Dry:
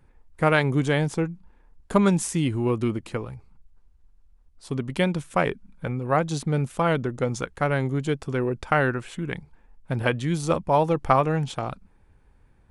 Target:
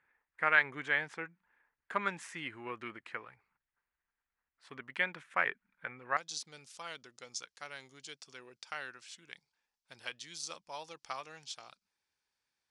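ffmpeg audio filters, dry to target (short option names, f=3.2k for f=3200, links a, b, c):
-af "asetnsamples=n=441:p=0,asendcmd='6.17 bandpass f 5200',bandpass=f=1.8k:t=q:w=2.6:csg=0,volume=1dB"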